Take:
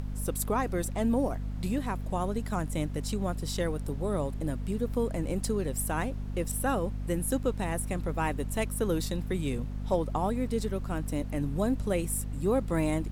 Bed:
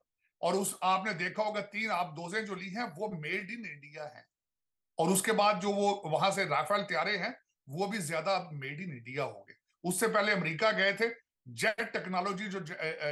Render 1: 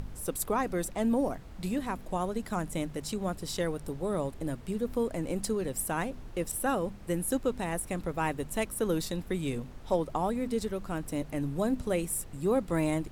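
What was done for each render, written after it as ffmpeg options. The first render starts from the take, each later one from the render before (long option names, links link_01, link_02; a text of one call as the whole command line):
ffmpeg -i in.wav -af "bandreject=frequency=50:width_type=h:width=4,bandreject=frequency=100:width_type=h:width=4,bandreject=frequency=150:width_type=h:width=4,bandreject=frequency=200:width_type=h:width=4,bandreject=frequency=250:width_type=h:width=4" out.wav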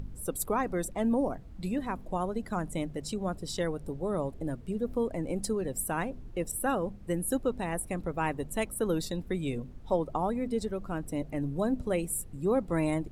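ffmpeg -i in.wav -af "afftdn=noise_reduction=11:noise_floor=-46" out.wav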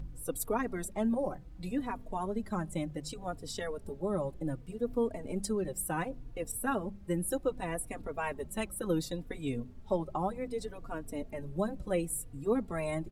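ffmpeg -i in.wav -filter_complex "[0:a]asplit=2[link_01][link_02];[link_02]adelay=3.5,afreqshift=-0.67[link_03];[link_01][link_03]amix=inputs=2:normalize=1" out.wav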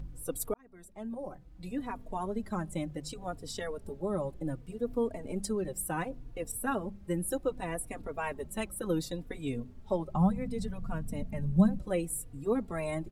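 ffmpeg -i in.wav -filter_complex "[0:a]asettb=1/sr,asplit=3[link_01][link_02][link_03];[link_01]atrim=end=10.144[link_04];[link_02]atrim=start=10.14:end=11.79,asetpts=PTS-STARTPTS,afade=type=in:duration=0.004:curve=qsin,afade=type=out:start_time=1.646:duration=0.004:curve=qsin,lowshelf=frequency=250:width_type=q:width=3:gain=8[link_05];[link_03]atrim=start=11.786[link_06];[link_04][link_05]acrossfade=duration=0.004:curve1=hsin:curve2=qsin[link_07];[link_07][link_06]acrossfade=duration=0.004:curve1=qsin:curve2=hsin,asplit=2[link_08][link_09];[link_08]atrim=end=0.54,asetpts=PTS-STARTPTS,afade=type=out:start_time=0.536:duration=0.004:curve=hsin[link_10];[link_09]atrim=start=0.54,asetpts=PTS-STARTPTS,afade=type=in:duration=1.58[link_11];[link_10][link_11]concat=n=2:v=0:a=1" out.wav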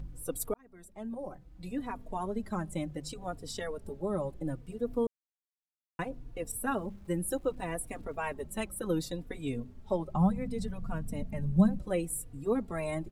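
ffmpeg -i in.wav -filter_complex "[0:a]asettb=1/sr,asplit=3[link_01][link_02][link_03];[link_01]atrim=end=6.544[link_04];[link_02]atrim=start=6.54:end=8.15,asetpts=PTS-STARTPTS,afade=type=in:duration=0.004:curve=qsin,afade=type=out:start_time=1.606:duration=0.004:curve=qsin,aeval=exprs='val(0)*gte(abs(val(0)),0.00106)':channel_layout=same[link_05];[link_03]atrim=start=8.146[link_06];[link_04][link_05]acrossfade=duration=0.004:curve1=hsin:curve2=qsin[link_07];[link_07][link_06]acrossfade=duration=0.004:curve1=qsin:curve2=hsin,asplit=3[link_08][link_09][link_10];[link_08]atrim=end=5.07,asetpts=PTS-STARTPTS,afade=type=out:start_time=5.066:duration=0.004:curve=hsin[link_11];[link_09]atrim=start=5.07:end=5.99,asetpts=PTS-STARTPTS,volume=0[link_12];[link_10]atrim=start=5.99,asetpts=PTS-STARTPTS,afade=type=in:duration=0.004:curve=hsin[link_13];[link_11][link_12][link_13]concat=n=3:v=0:a=1" out.wav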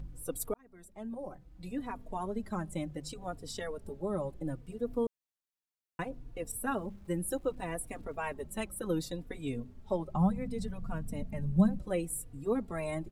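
ffmpeg -i in.wav -af "volume=-1.5dB" out.wav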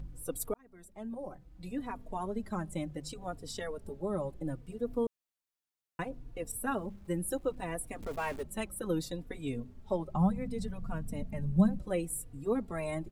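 ffmpeg -i in.wav -filter_complex "[0:a]asettb=1/sr,asplit=3[link_01][link_02][link_03];[link_01]atrim=end=8.024[link_04];[link_02]atrim=start=8.02:end=8.43,asetpts=PTS-STARTPTS,afade=type=in:duration=0.004:curve=qsin,afade=type=out:start_time=0.406:duration=0.004:curve=qsin,aeval=exprs='val(0)+0.5*0.00794*sgn(val(0))':channel_layout=same[link_05];[link_03]atrim=start=8.426[link_06];[link_04][link_05]acrossfade=duration=0.004:curve1=hsin:curve2=qsin[link_07];[link_07][link_06]acrossfade=duration=0.004:curve1=qsin:curve2=hsin" out.wav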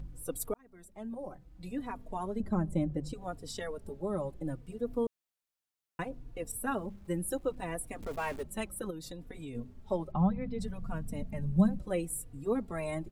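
ffmpeg -i in.wav -filter_complex "[0:a]asettb=1/sr,asplit=3[link_01][link_02][link_03];[link_01]atrim=end=2.404[link_04];[link_02]atrim=start=2.4:end=3.14,asetpts=PTS-STARTPTS,afade=type=in:duration=0.004:curve=qsin,afade=type=out:start_time=0.736:duration=0.004:curve=qsin,tiltshelf=frequency=970:gain=7.5[link_05];[link_03]atrim=start=3.136[link_06];[link_04][link_05]acrossfade=duration=0.004:curve1=hsin:curve2=qsin[link_07];[link_07][link_06]acrossfade=duration=0.004:curve1=qsin:curve2=hsin,asplit=3[link_08][link_09][link_10];[link_08]afade=type=out:start_time=8.89:duration=0.02[link_11];[link_09]acompressor=threshold=-39dB:ratio=6:attack=3.2:release=140:knee=1:detection=peak,afade=type=in:start_time=8.89:duration=0.02,afade=type=out:start_time=9.54:duration=0.02[link_12];[link_10]afade=type=in:start_time=9.54:duration=0.02[link_13];[link_11][link_12][link_13]amix=inputs=3:normalize=0,asplit=3[link_14][link_15][link_16];[link_14]afade=type=out:start_time=10.11:duration=0.02[link_17];[link_15]lowpass=frequency=4200:width=0.5412,lowpass=frequency=4200:width=1.3066,afade=type=in:start_time=10.11:duration=0.02,afade=type=out:start_time=10.59:duration=0.02[link_18];[link_16]afade=type=in:start_time=10.59:duration=0.02[link_19];[link_17][link_18][link_19]amix=inputs=3:normalize=0" out.wav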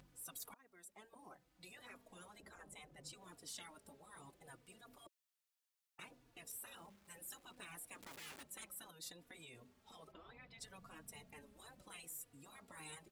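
ffmpeg -i in.wav -af "highpass=frequency=1300:poles=1,afftfilt=real='re*lt(hypot(re,im),0.0126)':imag='im*lt(hypot(re,im),0.0126)':win_size=1024:overlap=0.75" out.wav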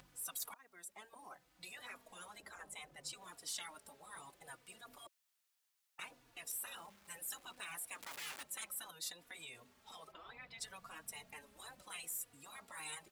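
ffmpeg -i in.wav -filter_complex "[0:a]acrossover=split=630[link_01][link_02];[link_01]alimiter=level_in=34.5dB:limit=-24dB:level=0:latency=1:release=233,volume=-34.5dB[link_03];[link_02]acontrast=77[link_04];[link_03][link_04]amix=inputs=2:normalize=0" out.wav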